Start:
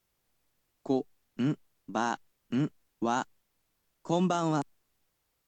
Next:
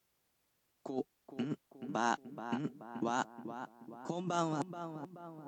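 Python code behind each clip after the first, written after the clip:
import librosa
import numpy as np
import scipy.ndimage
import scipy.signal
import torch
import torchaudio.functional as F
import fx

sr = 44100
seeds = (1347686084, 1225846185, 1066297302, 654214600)

y = fx.over_compress(x, sr, threshold_db=-30.0, ratio=-0.5)
y = fx.highpass(y, sr, hz=110.0, slope=6)
y = fx.echo_filtered(y, sr, ms=429, feedback_pct=54, hz=1600.0, wet_db=-9)
y = F.gain(torch.from_numpy(y), -3.5).numpy()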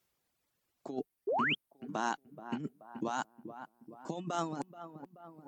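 y = fx.dereverb_blind(x, sr, rt60_s=1.3)
y = fx.spec_paint(y, sr, seeds[0], shape='rise', start_s=1.27, length_s=0.28, low_hz=360.0, high_hz=3400.0, level_db=-31.0)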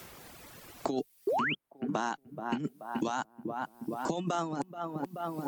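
y = fx.band_squash(x, sr, depth_pct=100)
y = F.gain(torch.from_numpy(y), 3.0).numpy()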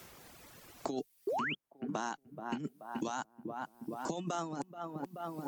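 y = fx.dynamic_eq(x, sr, hz=6200.0, q=1.9, threshold_db=-60.0, ratio=4.0, max_db=5)
y = F.gain(torch.from_numpy(y), -5.0).numpy()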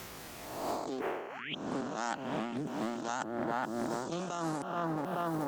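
y = fx.spec_swells(x, sr, rise_s=1.05)
y = fx.over_compress(y, sr, threshold_db=-39.0, ratio=-1.0)
y = fx.doppler_dist(y, sr, depth_ms=0.36)
y = F.gain(torch.from_numpy(y), 3.0).numpy()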